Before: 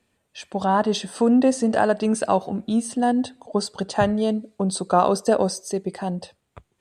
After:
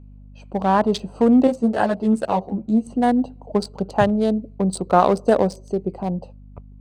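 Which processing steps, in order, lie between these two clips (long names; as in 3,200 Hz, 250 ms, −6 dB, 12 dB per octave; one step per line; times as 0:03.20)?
adaptive Wiener filter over 25 samples
mains hum 50 Hz, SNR 23 dB
0:01.47–0:02.87: string-ensemble chorus
level +3 dB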